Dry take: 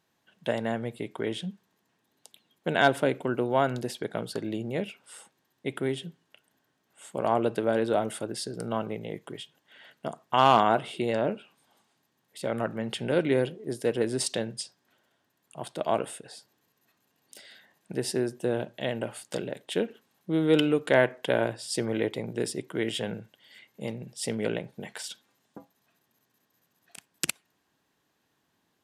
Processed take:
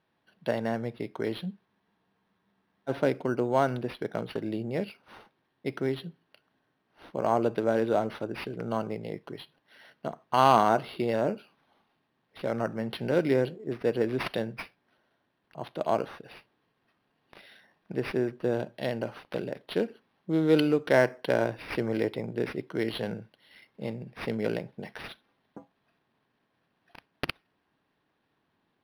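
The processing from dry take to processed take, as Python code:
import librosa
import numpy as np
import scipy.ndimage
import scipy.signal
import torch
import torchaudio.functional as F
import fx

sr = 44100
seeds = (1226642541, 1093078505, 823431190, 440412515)

y = scipy.signal.sosfilt(scipy.signal.butter(4, 8700.0, 'lowpass', fs=sr, output='sos'), x)
y = fx.spec_freeze(y, sr, seeds[0], at_s=1.67, hold_s=1.23)
y = np.interp(np.arange(len(y)), np.arange(len(y))[::6], y[::6])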